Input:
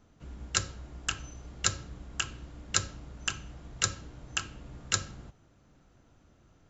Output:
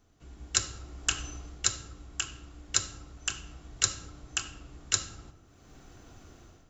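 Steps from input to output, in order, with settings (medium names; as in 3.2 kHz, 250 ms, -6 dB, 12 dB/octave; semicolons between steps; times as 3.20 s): treble shelf 4.3 kHz +9 dB; level rider gain up to 14.5 dB; on a send: reverberation RT60 1.2 s, pre-delay 3 ms, DRR 7 dB; on the sum: trim -5.5 dB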